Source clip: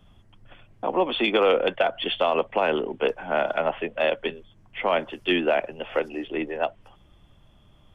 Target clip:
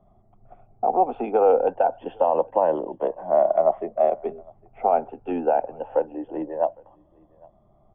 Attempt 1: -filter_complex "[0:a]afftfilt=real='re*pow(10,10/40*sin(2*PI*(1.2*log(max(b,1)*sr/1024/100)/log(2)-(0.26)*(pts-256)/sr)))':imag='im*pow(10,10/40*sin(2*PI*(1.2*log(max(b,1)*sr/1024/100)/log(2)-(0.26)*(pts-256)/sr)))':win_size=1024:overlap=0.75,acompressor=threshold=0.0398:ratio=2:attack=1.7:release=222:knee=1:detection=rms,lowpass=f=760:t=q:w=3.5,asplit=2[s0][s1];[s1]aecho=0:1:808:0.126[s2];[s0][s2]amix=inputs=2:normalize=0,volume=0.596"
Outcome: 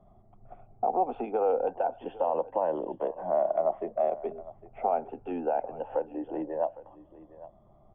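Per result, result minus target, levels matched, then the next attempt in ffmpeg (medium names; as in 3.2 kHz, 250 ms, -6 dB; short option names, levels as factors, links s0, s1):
compression: peak gain reduction +9 dB; echo-to-direct +9.5 dB
-filter_complex "[0:a]afftfilt=real='re*pow(10,10/40*sin(2*PI*(1.2*log(max(b,1)*sr/1024/100)/log(2)-(0.26)*(pts-256)/sr)))':imag='im*pow(10,10/40*sin(2*PI*(1.2*log(max(b,1)*sr/1024/100)/log(2)-(0.26)*(pts-256)/sr)))':win_size=1024:overlap=0.75,lowpass=f=760:t=q:w=3.5,asplit=2[s0][s1];[s1]aecho=0:1:808:0.126[s2];[s0][s2]amix=inputs=2:normalize=0,volume=0.596"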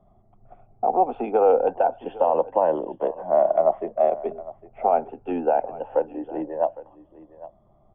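echo-to-direct +9.5 dB
-filter_complex "[0:a]afftfilt=real='re*pow(10,10/40*sin(2*PI*(1.2*log(max(b,1)*sr/1024/100)/log(2)-(0.26)*(pts-256)/sr)))':imag='im*pow(10,10/40*sin(2*PI*(1.2*log(max(b,1)*sr/1024/100)/log(2)-(0.26)*(pts-256)/sr)))':win_size=1024:overlap=0.75,lowpass=f=760:t=q:w=3.5,asplit=2[s0][s1];[s1]aecho=0:1:808:0.0422[s2];[s0][s2]amix=inputs=2:normalize=0,volume=0.596"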